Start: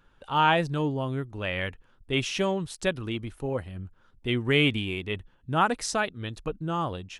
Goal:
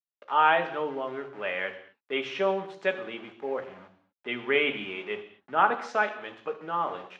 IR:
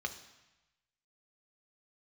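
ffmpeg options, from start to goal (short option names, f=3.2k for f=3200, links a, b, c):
-filter_complex "[0:a]aeval=exprs='val(0)*gte(abs(val(0)),0.00891)':c=same,highpass=400,lowpass=2.4k[a];[1:a]atrim=start_sample=2205,afade=t=out:st=0.3:d=0.01,atrim=end_sample=13671[b];[a][b]afir=irnorm=-1:irlink=0"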